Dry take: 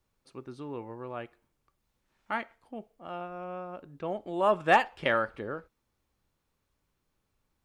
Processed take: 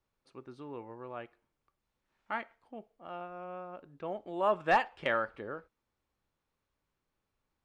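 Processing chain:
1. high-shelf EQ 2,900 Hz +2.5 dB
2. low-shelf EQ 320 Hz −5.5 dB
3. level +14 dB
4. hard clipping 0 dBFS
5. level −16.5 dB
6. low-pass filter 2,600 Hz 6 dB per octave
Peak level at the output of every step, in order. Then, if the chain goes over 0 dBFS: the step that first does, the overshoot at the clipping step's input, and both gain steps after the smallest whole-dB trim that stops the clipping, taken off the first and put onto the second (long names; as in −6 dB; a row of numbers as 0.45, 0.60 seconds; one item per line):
−7.5, −7.5, +6.5, 0.0, −16.5, −16.5 dBFS
step 3, 6.5 dB
step 3 +7 dB, step 5 −9.5 dB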